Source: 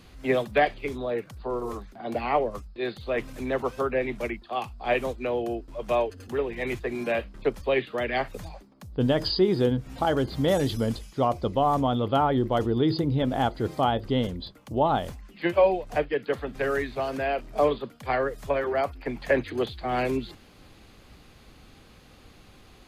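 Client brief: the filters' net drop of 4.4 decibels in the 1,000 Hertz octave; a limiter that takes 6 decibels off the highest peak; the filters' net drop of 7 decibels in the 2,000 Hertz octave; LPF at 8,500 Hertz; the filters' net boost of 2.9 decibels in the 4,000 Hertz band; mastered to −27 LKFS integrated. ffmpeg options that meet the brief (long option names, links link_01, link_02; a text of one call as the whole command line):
ffmpeg -i in.wav -af "lowpass=8500,equalizer=frequency=1000:width_type=o:gain=-5,equalizer=frequency=2000:width_type=o:gain=-9,equalizer=frequency=4000:width_type=o:gain=7,volume=3dB,alimiter=limit=-14.5dB:level=0:latency=1" out.wav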